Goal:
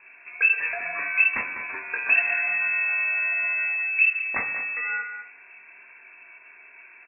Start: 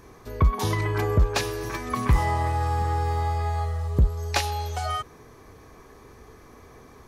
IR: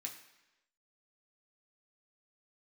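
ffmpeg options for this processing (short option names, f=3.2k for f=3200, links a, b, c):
-filter_complex "[0:a]asplit=2[a][b];[b]adelay=200,highpass=300,lowpass=3.4k,asoftclip=type=hard:threshold=-22dB,volume=-8dB[c];[a][c]amix=inputs=2:normalize=0,lowpass=f=2.3k:t=q:w=0.5098,lowpass=f=2.3k:t=q:w=0.6013,lowpass=f=2.3k:t=q:w=0.9,lowpass=f=2.3k:t=q:w=2.563,afreqshift=-2700,asplit=2[d][e];[1:a]atrim=start_sample=2205,lowpass=2.4k,adelay=19[f];[e][f]afir=irnorm=-1:irlink=0,volume=2.5dB[g];[d][g]amix=inputs=2:normalize=0,volume=-3dB"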